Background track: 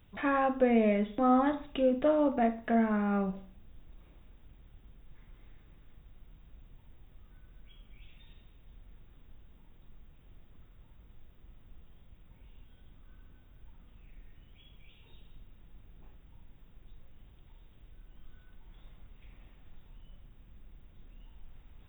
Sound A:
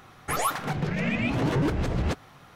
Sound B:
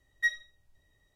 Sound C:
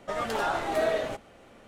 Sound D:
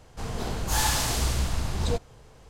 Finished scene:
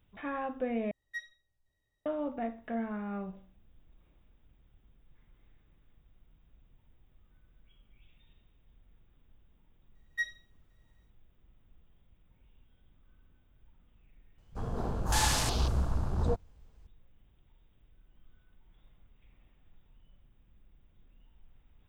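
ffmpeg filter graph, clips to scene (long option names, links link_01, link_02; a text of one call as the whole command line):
ffmpeg -i bed.wav -i cue0.wav -i cue1.wav -i cue2.wav -i cue3.wav -filter_complex "[2:a]asplit=2[link_01][link_02];[0:a]volume=-8dB[link_03];[link_02]dynaudnorm=framelen=120:gausssize=3:maxgain=3dB[link_04];[4:a]afwtdn=0.02[link_05];[link_03]asplit=2[link_06][link_07];[link_06]atrim=end=0.914[link_08];[link_01]atrim=end=1.15,asetpts=PTS-STARTPTS,volume=-12.5dB[link_09];[link_07]atrim=start=2.056[link_10];[link_04]atrim=end=1.15,asetpts=PTS-STARTPTS,volume=-8.5dB,afade=type=in:duration=0.004:curve=hsin,afade=type=out:start_time=1.146:duration=0.004:curve=hsin,adelay=9950[link_11];[link_05]atrim=end=2.49,asetpts=PTS-STARTPTS,volume=-2.5dB,afade=type=in:duration=0.004:curve=hsin,afade=type=out:start_time=2.486:duration=0.004:curve=hsin,adelay=14380[link_12];[link_08][link_09]acrossfade=duration=0.004:curve1=hsin:curve2=hsin[link_13];[link_13][link_10]acrossfade=duration=0.004:curve1=hsin:curve2=hsin[link_14];[link_14][link_11][link_12]amix=inputs=3:normalize=0" out.wav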